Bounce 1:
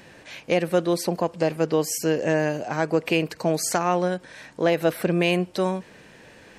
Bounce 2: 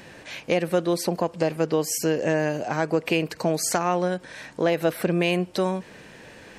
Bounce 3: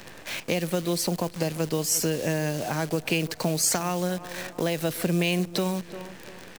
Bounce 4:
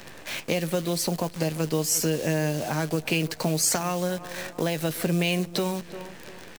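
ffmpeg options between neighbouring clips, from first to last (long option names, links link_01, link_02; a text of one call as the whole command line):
ffmpeg -i in.wav -af "acompressor=threshold=-28dB:ratio=1.5,volume=3dB" out.wav
ffmpeg -i in.wav -filter_complex "[0:a]acrusher=bits=7:dc=4:mix=0:aa=0.000001,asplit=2[link_01][link_02];[link_02]adelay=347,lowpass=frequency=3300:poles=1,volume=-19dB,asplit=2[link_03][link_04];[link_04]adelay=347,lowpass=frequency=3300:poles=1,volume=0.37,asplit=2[link_05][link_06];[link_06]adelay=347,lowpass=frequency=3300:poles=1,volume=0.37[link_07];[link_01][link_03][link_05][link_07]amix=inputs=4:normalize=0,acrossover=split=190|3000[link_08][link_09][link_10];[link_09]acompressor=threshold=-34dB:ratio=2.5[link_11];[link_08][link_11][link_10]amix=inputs=3:normalize=0,volume=3.5dB" out.wav
ffmpeg -i in.wav -filter_complex "[0:a]asplit=2[link_01][link_02];[link_02]adelay=13,volume=-11.5dB[link_03];[link_01][link_03]amix=inputs=2:normalize=0" out.wav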